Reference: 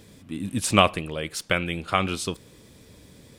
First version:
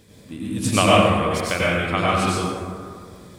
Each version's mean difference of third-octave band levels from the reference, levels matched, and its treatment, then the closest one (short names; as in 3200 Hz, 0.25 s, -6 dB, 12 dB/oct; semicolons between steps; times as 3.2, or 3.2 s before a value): 8.5 dB: plate-style reverb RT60 2 s, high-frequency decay 0.4×, pre-delay 80 ms, DRR -7 dB; gain -2.5 dB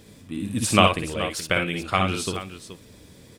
3.5 dB: tapped delay 54/63/426 ms -6.5/-6.5/-12 dB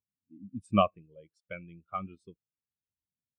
19.0 dB: spectral expander 2.5:1; gain -7 dB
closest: second